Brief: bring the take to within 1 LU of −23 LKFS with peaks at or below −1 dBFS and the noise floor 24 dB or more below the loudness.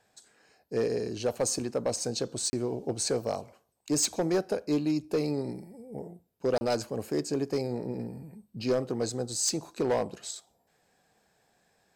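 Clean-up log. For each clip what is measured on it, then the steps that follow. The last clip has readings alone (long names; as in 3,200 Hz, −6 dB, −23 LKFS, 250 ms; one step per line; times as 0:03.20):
share of clipped samples 0.5%; peaks flattened at −20.5 dBFS; number of dropouts 2; longest dropout 30 ms; integrated loudness −30.5 LKFS; sample peak −20.5 dBFS; target loudness −23.0 LKFS
→ clipped peaks rebuilt −20.5 dBFS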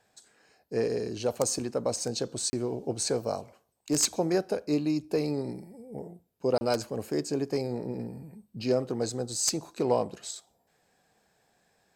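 share of clipped samples 0.0%; number of dropouts 2; longest dropout 30 ms
→ repair the gap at 0:02.50/0:06.58, 30 ms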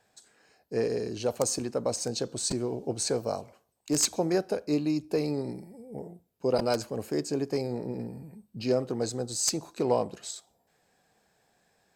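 number of dropouts 0; integrated loudness −30.0 LKFS; sample peak −11.5 dBFS; target loudness −23.0 LKFS
→ level +7 dB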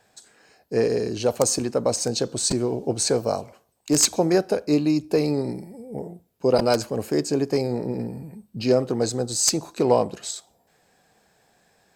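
integrated loudness −23.0 LKFS; sample peak −4.5 dBFS; background noise floor −66 dBFS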